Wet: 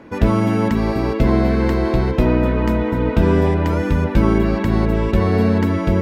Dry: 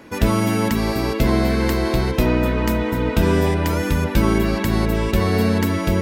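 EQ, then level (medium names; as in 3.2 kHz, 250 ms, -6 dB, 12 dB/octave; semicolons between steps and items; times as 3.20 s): treble shelf 2.3 kHz -9.5 dB; treble shelf 8 kHz -11.5 dB; +2.5 dB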